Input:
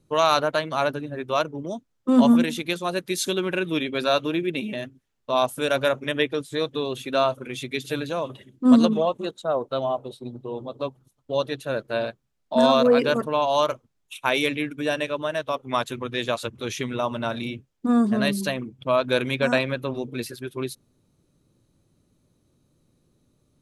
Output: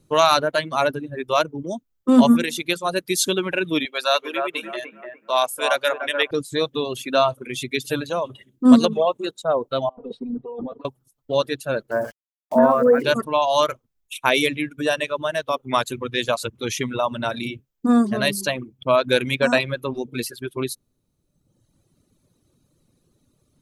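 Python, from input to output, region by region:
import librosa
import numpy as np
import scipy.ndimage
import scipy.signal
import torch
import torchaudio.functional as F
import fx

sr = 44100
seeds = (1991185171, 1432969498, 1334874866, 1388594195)

y = fx.chain(x, sr, fx.highpass(hz=610.0, slope=12),
    fx.echo_bbd(ms=295, stages=4096, feedback_pct=36, wet_db=-4), at=(3.85, 6.31))
y = fx.chain(y, sr, fx.over_compress(threshold_db=-38.0, ratio=-1.0),
    fx.lowpass(hz=1700.0, slope=12),
    fx.comb(ms=4.2, depth=1.0), at=(9.89, 10.85))
y = fx.chain(y, sr, fx.cheby1_lowpass(hz=1800.0, order=4),
    fx.sample_gate(floor_db=-42.5), at=(11.91, 13.03))
y = fx.high_shelf(y, sr, hz=5500.0, db=4.5)
y = fx.dereverb_blind(y, sr, rt60_s=1.3)
y = y * librosa.db_to_amplitude(4.0)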